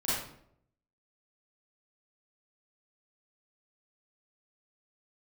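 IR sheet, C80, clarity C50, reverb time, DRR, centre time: 2.5 dB, -2.5 dB, 0.70 s, -11.0 dB, 74 ms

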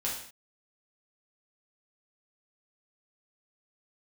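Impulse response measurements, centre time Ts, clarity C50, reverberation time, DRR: 39 ms, 4.0 dB, no single decay rate, -6.5 dB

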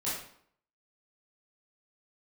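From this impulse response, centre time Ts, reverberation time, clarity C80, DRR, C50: 53 ms, 0.65 s, 5.5 dB, -9.5 dB, 1.5 dB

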